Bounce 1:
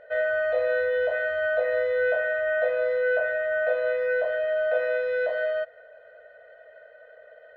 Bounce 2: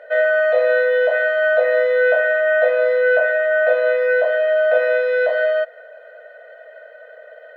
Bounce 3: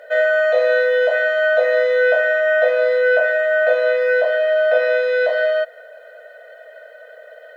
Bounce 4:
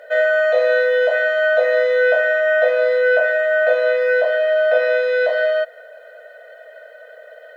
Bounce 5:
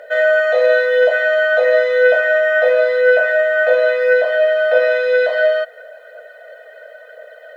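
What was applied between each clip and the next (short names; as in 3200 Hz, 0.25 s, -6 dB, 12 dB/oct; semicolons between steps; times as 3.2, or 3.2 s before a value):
HPF 420 Hz 24 dB/oct; gain +9 dB
tone controls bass +3 dB, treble +14 dB
nothing audible
phaser 0.97 Hz, delay 2.7 ms, feedback 31%; gain +2 dB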